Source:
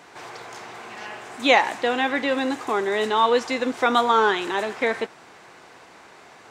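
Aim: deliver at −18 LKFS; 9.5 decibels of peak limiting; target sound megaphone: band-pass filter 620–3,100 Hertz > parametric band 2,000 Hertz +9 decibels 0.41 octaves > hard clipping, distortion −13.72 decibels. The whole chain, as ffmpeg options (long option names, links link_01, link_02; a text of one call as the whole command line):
ffmpeg -i in.wav -af "alimiter=limit=-12.5dB:level=0:latency=1,highpass=620,lowpass=3100,equalizer=frequency=2000:width_type=o:width=0.41:gain=9,asoftclip=type=hard:threshold=-19dB,volume=7.5dB" out.wav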